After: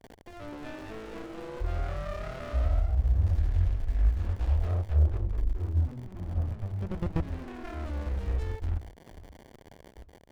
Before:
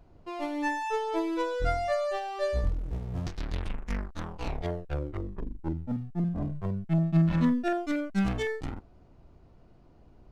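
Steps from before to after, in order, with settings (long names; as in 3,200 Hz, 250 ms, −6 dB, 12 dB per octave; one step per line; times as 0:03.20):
output level in coarse steps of 20 dB
delay with pitch and tempo change per echo 267 ms, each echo +1 semitone, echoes 3
hum removal 101 Hz, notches 2
noise gate with hold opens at −47 dBFS
low shelf with overshoot 110 Hz +11.5 dB, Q 3
hollow resonant body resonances 640/1,700 Hz, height 8 dB, ringing for 30 ms
surface crackle 220 per second −44 dBFS
windowed peak hold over 33 samples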